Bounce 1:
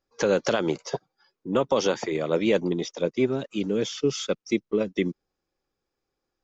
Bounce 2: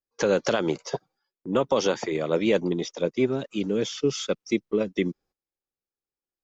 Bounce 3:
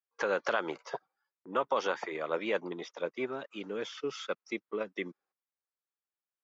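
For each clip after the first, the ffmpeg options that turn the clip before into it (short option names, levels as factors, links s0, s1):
-af "agate=range=0.141:threshold=0.00178:ratio=16:detection=peak"
-af "bandpass=f=1300:t=q:w=1.2:csg=0"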